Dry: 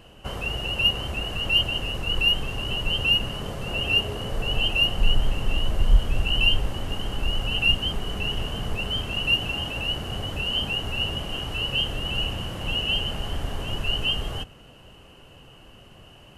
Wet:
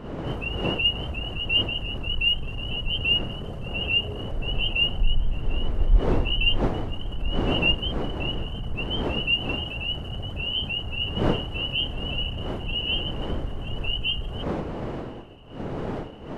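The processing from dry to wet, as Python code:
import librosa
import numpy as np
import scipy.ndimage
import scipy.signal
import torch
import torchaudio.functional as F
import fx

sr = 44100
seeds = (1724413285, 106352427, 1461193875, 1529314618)

y = fx.envelope_sharpen(x, sr, power=1.5)
y = fx.dmg_wind(y, sr, seeds[0], corner_hz=460.0, level_db=-32.0)
y = F.gain(torch.from_numpy(y), -1.5).numpy()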